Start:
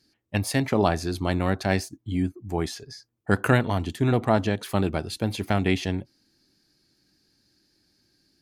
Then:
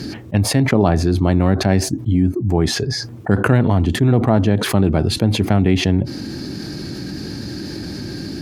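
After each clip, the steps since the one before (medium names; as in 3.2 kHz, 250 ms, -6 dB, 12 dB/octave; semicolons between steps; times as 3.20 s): high-pass 99 Hz; tilt EQ -3 dB/octave; level flattener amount 70%; trim -1 dB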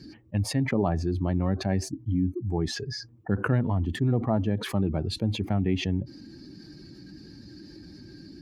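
expander on every frequency bin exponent 1.5; treble shelf 11 kHz -11 dB; trim -8.5 dB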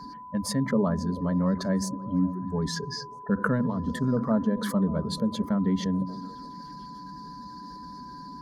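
static phaser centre 510 Hz, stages 8; repeats whose band climbs or falls 145 ms, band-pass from 160 Hz, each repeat 0.7 oct, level -8.5 dB; whistle 1 kHz -44 dBFS; trim +3.5 dB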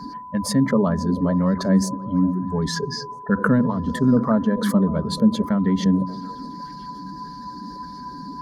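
sweeping bell 1.7 Hz 210–3000 Hz +7 dB; trim +5 dB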